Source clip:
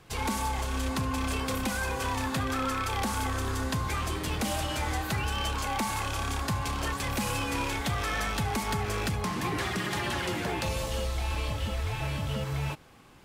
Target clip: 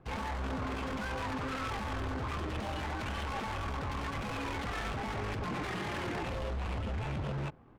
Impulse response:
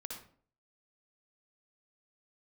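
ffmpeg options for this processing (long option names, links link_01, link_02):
-af "aeval=exprs='0.0335*(abs(mod(val(0)/0.0335+3,4)-2)-1)':channel_layout=same,adynamicsmooth=sensitivity=7:basefreq=960,atempo=1.7"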